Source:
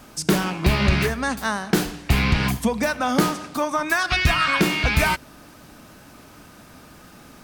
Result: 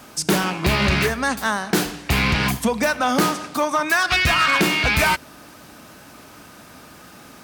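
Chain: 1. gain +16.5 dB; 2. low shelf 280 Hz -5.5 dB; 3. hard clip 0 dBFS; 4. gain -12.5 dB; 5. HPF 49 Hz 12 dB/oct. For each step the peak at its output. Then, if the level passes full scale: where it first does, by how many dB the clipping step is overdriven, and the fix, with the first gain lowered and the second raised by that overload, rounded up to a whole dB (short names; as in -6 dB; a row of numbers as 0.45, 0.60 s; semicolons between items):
+7.5, +7.5, 0.0, -12.5, -7.5 dBFS; step 1, 7.5 dB; step 1 +8.5 dB, step 4 -4.5 dB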